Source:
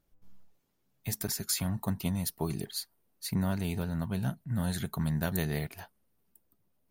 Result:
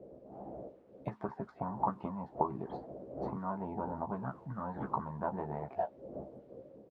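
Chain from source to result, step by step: wind noise 300 Hz -49 dBFS; compression 16:1, threshold -33 dBFS, peak gain reduction 9 dB; low-pass that closes with the level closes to 1.4 kHz, closed at -34.5 dBFS; tilt shelf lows +9.5 dB, about 700 Hz; doubling 15 ms -4 dB; harmonic-percussive split harmonic -4 dB; word length cut 12-bit, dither none; auto-wah 510–1200 Hz, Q 5.8, up, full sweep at -26.5 dBFS; level rider gain up to 4 dB; trim +16.5 dB

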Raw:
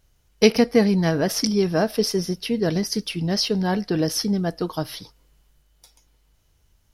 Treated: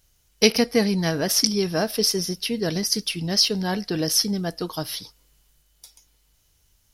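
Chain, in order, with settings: treble shelf 2.7 kHz +11 dB; trim -3.5 dB

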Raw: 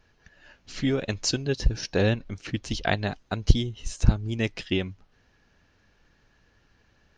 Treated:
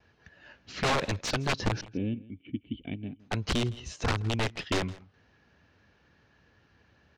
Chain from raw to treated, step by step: high-pass 63 Hz 24 dB/octave; gate with hold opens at -58 dBFS; 1.81–3.20 s: cascade formant filter i; dynamic bell 1.2 kHz, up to +4 dB, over -50 dBFS, Q 1.8; integer overflow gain 21 dB; distance through air 110 m; delay 163 ms -21 dB; trim +1.5 dB

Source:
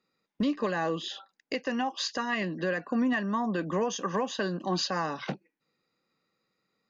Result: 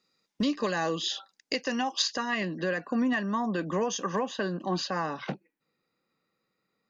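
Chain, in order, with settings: peaking EQ 5.8 kHz +10.5 dB 1.5 oct, from 2.02 s +3 dB, from 4.19 s -4 dB

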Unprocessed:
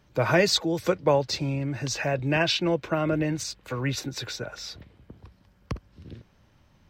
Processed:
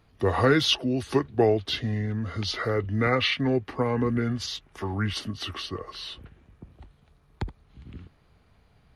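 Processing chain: tape speed -23%

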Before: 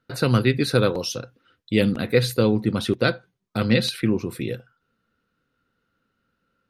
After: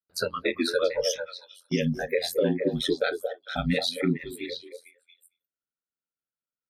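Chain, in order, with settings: compression 3:1, threshold -22 dBFS, peak gain reduction 8 dB; bass shelf 110 Hz -5.5 dB; hum notches 60/120/180/240/300/360/420 Hz; spectral noise reduction 29 dB; peak limiter -21.5 dBFS, peak gain reduction 7 dB; treble shelf 4.5 kHz -6 dB; gate -51 dBFS, range -8 dB; ring modulator 43 Hz; on a send: repeats whose band climbs or falls 226 ms, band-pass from 580 Hz, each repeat 1.4 oct, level -3.5 dB; on the sum: trim +9 dB

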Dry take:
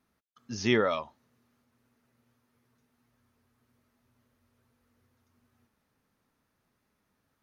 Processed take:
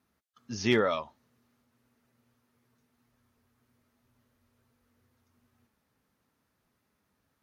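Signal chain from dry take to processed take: hard clipper -14.5 dBFS, distortion -28 dB; Vorbis 64 kbps 44.1 kHz

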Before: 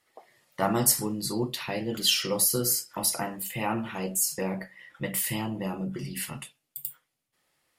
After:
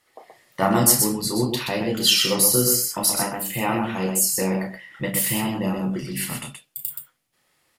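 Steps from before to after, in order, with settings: loudspeakers at several distances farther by 11 m -7 dB, 43 m -5 dB; trim +5 dB

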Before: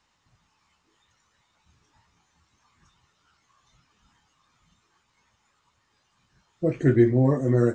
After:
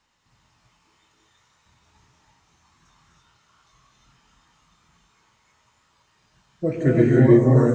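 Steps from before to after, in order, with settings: gated-style reverb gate 360 ms rising, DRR -4 dB

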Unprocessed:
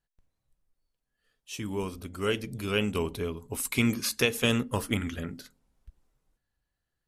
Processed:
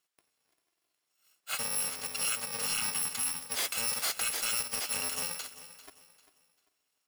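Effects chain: bit-reversed sample order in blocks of 128 samples; frequency weighting A; spectral replace 2.61–3.40 s, 320–760 Hz both; bass shelf 190 Hz -6 dB; band-stop 6.2 kHz, Q 20; in parallel at +1 dB: compression, threshold -40 dBFS, peak gain reduction 16.5 dB; on the sum: peak limiter -20.5 dBFS, peak gain reduction 11 dB; saturation -28.5 dBFS, distortion -13 dB; on a send: feedback delay 395 ms, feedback 31%, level -15 dB; on the sum: trim +3.5 dB

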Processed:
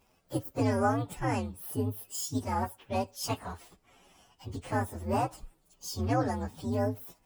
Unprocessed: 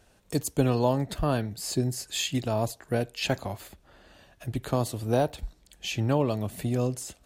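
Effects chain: frequency axis rescaled in octaves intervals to 129%; bass shelf 80 Hz -10.5 dB

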